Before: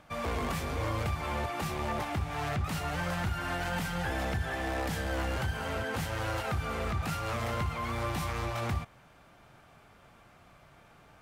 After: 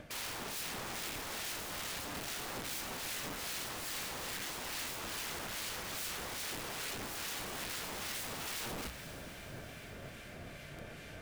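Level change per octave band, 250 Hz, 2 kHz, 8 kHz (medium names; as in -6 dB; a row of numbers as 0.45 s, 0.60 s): -11.0 dB, -5.5 dB, +6.0 dB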